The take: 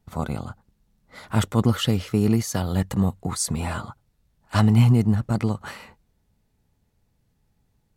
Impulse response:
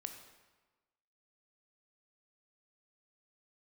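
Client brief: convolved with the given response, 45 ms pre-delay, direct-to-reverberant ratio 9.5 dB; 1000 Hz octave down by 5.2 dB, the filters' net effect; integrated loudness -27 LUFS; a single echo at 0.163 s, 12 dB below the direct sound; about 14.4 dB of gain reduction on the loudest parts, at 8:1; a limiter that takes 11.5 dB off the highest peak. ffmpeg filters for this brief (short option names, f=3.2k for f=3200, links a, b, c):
-filter_complex "[0:a]equalizer=f=1k:t=o:g=-7,acompressor=threshold=-28dB:ratio=8,alimiter=level_in=5.5dB:limit=-24dB:level=0:latency=1,volume=-5.5dB,aecho=1:1:163:0.251,asplit=2[a][b];[1:a]atrim=start_sample=2205,adelay=45[c];[b][c]afir=irnorm=-1:irlink=0,volume=-6.5dB[d];[a][d]amix=inputs=2:normalize=0,volume=12dB"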